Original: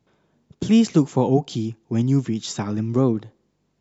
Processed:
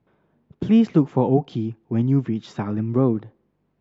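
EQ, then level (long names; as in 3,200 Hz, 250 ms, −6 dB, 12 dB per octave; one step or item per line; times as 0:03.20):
low-pass filter 2,200 Hz 12 dB per octave
0.0 dB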